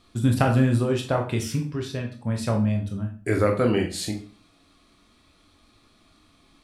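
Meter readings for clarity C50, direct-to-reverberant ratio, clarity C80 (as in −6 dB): 8.5 dB, 2.0 dB, 14.0 dB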